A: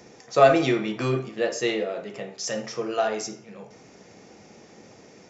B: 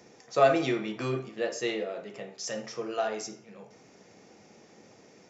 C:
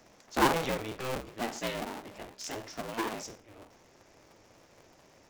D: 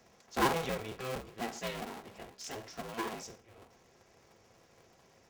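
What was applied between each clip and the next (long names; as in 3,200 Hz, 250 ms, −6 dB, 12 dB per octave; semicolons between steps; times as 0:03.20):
low-shelf EQ 61 Hz −9.5 dB; level −5.5 dB
sub-harmonics by changed cycles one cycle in 2, inverted; level −4 dB
notch comb filter 300 Hz; level −2.5 dB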